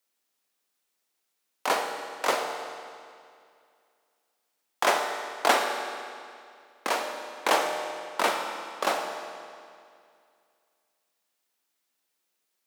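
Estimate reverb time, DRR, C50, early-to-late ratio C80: 2.3 s, 3.5 dB, 4.5 dB, 5.5 dB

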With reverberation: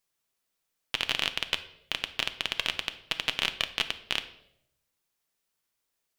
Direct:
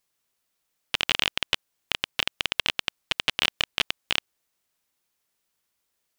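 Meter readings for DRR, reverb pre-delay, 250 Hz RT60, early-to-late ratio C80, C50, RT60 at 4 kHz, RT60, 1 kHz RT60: 9.0 dB, 3 ms, 0.90 s, 17.0 dB, 14.0 dB, 0.65 s, 0.75 s, 0.65 s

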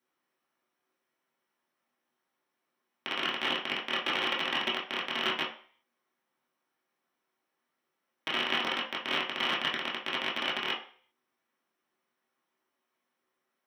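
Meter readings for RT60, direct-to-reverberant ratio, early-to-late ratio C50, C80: 0.45 s, -6.0 dB, 7.0 dB, 12.0 dB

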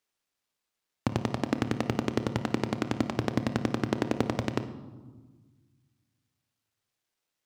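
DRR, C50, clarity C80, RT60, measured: 9.5 dB, 11.5 dB, 14.0 dB, 1.4 s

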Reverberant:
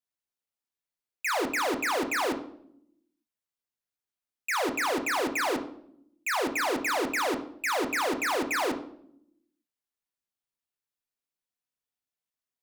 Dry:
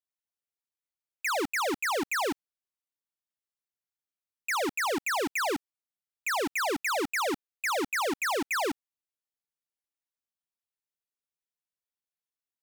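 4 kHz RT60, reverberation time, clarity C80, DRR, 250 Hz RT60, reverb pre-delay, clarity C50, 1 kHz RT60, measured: 0.50 s, 0.70 s, 14.0 dB, 5.0 dB, 1.2 s, 8 ms, 11.0 dB, 0.60 s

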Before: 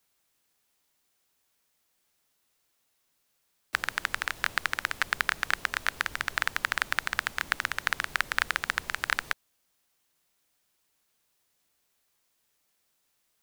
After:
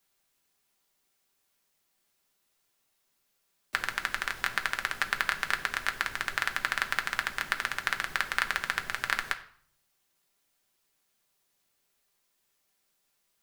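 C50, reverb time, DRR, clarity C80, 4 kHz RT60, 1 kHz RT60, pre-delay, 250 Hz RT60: 14.0 dB, 0.55 s, 5.0 dB, 17.0 dB, 0.50 s, 0.55 s, 5 ms, 0.65 s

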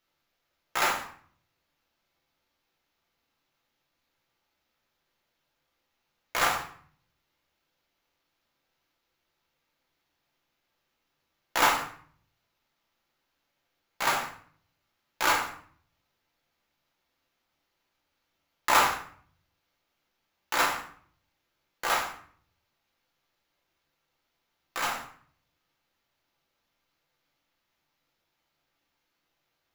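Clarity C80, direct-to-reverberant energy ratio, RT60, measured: 11.5 dB, -1.5 dB, 0.50 s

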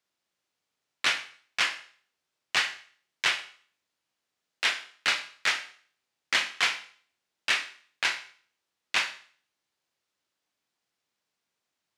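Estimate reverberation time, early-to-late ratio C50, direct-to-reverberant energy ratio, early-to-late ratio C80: 0.45 s, 13.5 dB, 9.0 dB, 16.5 dB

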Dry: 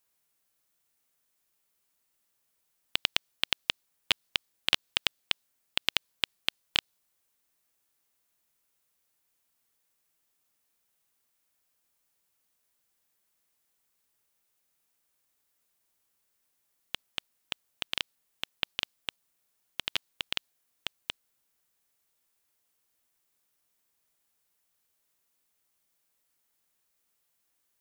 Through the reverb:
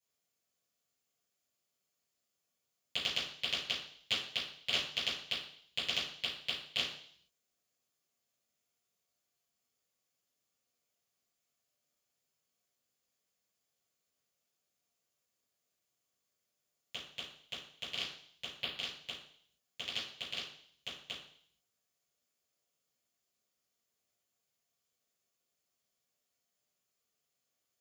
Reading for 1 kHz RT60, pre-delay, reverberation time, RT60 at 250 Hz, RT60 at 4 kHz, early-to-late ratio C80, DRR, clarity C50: 0.60 s, 3 ms, 0.60 s, 0.65 s, 0.70 s, 9.0 dB, -11.5 dB, 5.0 dB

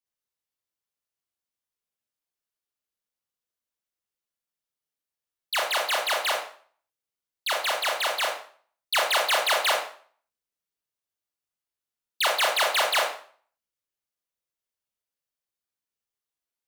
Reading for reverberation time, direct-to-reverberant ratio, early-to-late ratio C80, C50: 0.50 s, -0.5 dB, 9.0 dB, 5.0 dB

